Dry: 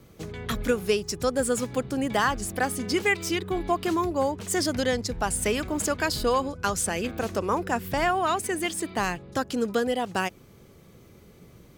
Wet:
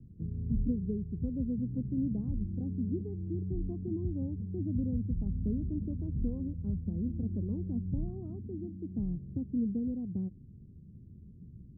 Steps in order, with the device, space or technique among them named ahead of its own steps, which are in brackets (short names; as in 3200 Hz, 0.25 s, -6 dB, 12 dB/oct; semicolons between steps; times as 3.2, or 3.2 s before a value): the neighbour's flat through the wall (LPF 240 Hz 24 dB/oct; bell 80 Hz +3.5 dB 0.75 oct); gain +1.5 dB